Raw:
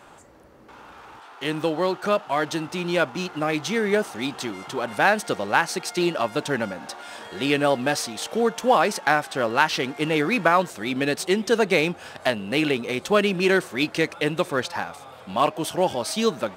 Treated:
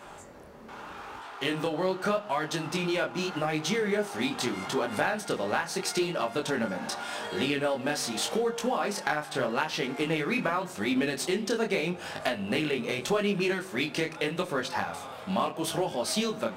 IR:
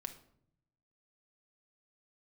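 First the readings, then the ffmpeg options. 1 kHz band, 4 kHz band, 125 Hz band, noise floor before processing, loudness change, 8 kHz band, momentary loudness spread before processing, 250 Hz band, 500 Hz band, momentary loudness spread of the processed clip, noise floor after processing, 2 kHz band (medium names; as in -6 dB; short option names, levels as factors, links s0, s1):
-7.5 dB, -4.0 dB, -4.5 dB, -46 dBFS, -6.0 dB, -2.5 dB, 9 LU, -4.5 dB, -6.5 dB, 6 LU, -44 dBFS, -7.0 dB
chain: -filter_complex "[0:a]acompressor=threshold=0.0398:ratio=6,flanger=delay=19:depth=7.8:speed=0.82,asplit=2[s0][s1];[1:a]atrim=start_sample=2205[s2];[s1][s2]afir=irnorm=-1:irlink=0,volume=1.33[s3];[s0][s3]amix=inputs=2:normalize=0"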